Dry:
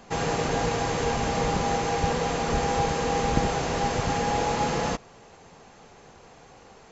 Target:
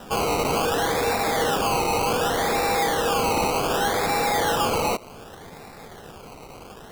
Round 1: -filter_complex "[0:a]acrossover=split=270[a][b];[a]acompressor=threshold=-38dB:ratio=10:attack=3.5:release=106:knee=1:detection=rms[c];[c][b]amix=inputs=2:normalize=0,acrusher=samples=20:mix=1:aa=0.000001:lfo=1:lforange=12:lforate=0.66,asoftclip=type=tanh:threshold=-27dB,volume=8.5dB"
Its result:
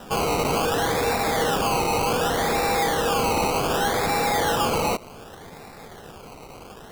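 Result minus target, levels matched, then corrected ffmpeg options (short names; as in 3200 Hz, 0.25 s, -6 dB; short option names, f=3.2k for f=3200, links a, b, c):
compressor: peak gain reduction -8 dB
-filter_complex "[0:a]acrossover=split=270[a][b];[a]acompressor=threshold=-47dB:ratio=10:attack=3.5:release=106:knee=1:detection=rms[c];[c][b]amix=inputs=2:normalize=0,acrusher=samples=20:mix=1:aa=0.000001:lfo=1:lforange=12:lforate=0.66,asoftclip=type=tanh:threshold=-27dB,volume=8.5dB"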